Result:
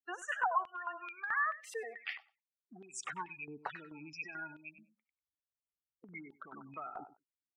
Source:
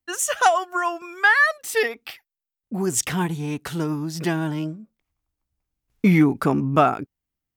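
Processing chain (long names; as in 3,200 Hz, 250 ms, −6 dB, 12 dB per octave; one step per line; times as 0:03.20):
loose part that buzzes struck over −29 dBFS, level −21 dBFS
gate on every frequency bin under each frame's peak −15 dB strong
downward compressor, threshold −29 dBFS, peak gain reduction 16 dB
repeating echo 96 ms, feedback 17%, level −13 dB
band-pass on a step sequencer 4.6 Hz 850–3,400 Hz
level +5.5 dB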